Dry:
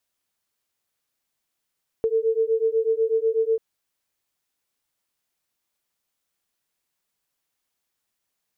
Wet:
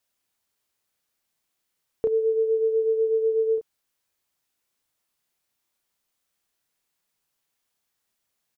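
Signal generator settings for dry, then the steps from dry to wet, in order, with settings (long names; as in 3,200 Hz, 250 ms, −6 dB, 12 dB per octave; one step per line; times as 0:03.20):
two tones that beat 444 Hz, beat 8.1 Hz, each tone −22 dBFS 1.54 s
double-tracking delay 32 ms −5 dB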